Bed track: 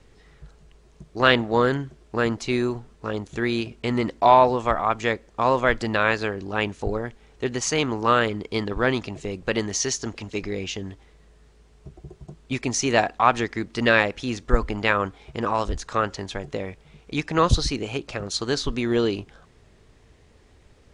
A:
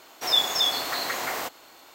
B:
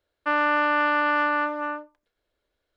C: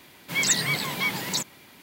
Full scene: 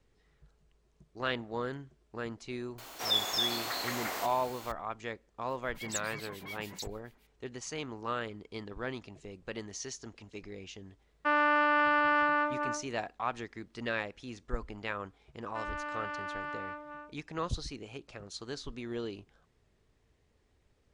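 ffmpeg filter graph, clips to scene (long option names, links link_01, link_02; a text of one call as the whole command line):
ffmpeg -i bed.wav -i cue0.wav -i cue1.wav -i cue2.wav -filter_complex "[2:a]asplit=2[link_01][link_02];[0:a]volume=-16dB[link_03];[1:a]aeval=exprs='val(0)+0.5*0.0133*sgn(val(0))':channel_layout=same[link_04];[3:a]acrossover=split=2000[link_05][link_06];[link_05]aeval=exprs='val(0)*(1-1/2+1/2*cos(2*PI*7*n/s))':channel_layout=same[link_07];[link_06]aeval=exprs='val(0)*(1-1/2-1/2*cos(2*PI*7*n/s))':channel_layout=same[link_08];[link_07][link_08]amix=inputs=2:normalize=0[link_09];[link_04]atrim=end=1.94,asetpts=PTS-STARTPTS,volume=-8dB,afade=type=in:duration=0.004:curve=hsin,afade=type=out:start_time=1.936:duration=0.004:curve=hsin,adelay=2780[link_10];[link_09]atrim=end=1.82,asetpts=PTS-STARTPTS,volume=-13.5dB,afade=type=in:duration=0.004:curve=hsin,afade=type=out:start_time=1.816:duration=0.004:curve=hsin,adelay=240345S[link_11];[link_01]atrim=end=2.76,asetpts=PTS-STARTPTS,volume=-4.5dB,afade=type=in:duration=0.004:curve=hsin,afade=type=out:start_time=2.756:duration=0.004:curve=hsin,adelay=10990[link_12];[link_02]atrim=end=2.76,asetpts=PTS-STARTPTS,volume=-17dB,afade=type=in:duration=0.004:curve=hsin,afade=type=out:start_time=2.756:duration=0.004:curve=hsin,adelay=15290[link_13];[link_03][link_10][link_11][link_12][link_13]amix=inputs=5:normalize=0" out.wav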